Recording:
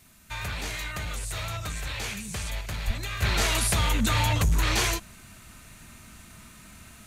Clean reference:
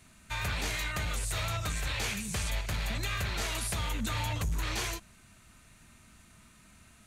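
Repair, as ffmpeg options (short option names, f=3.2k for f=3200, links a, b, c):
-filter_complex "[0:a]asplit=3[a][b][c];[a]afade=t=out:st=2.86:d=0.02[d];[b]highpass=f=140:w=0.5412,highpass=f=140:w=1.3066,afade=t=in:st=2.86:d=0.02,afade=t=out:st=2.98:d=0.02[e];[c]afade=t=in:st=2.98:d=0.02[f];[d][e][f]amix=inputs=3:normalize=0,agate=range=-21dB:threshold=-41dB,asetnsamples=n=441:p=0,asendcmd='3.22 volume volume -9dB',volume=0dB"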